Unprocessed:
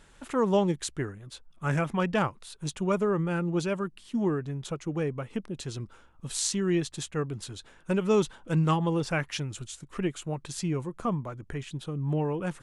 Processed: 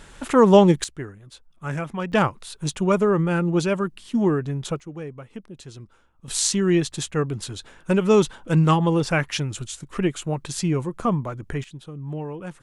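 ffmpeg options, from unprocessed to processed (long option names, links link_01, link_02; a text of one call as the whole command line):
ffmpeg -i in.wav -af "asetnsamples=nb_out_samples=441:pad=0,asendcmd='0.84 volume volume -1dB;2.12 volume volume 7dB;4.8 volume volume -4.5dB;6.28 volume volume 7dB;11.64 volume volume -3dB',volume=11dB" out.wav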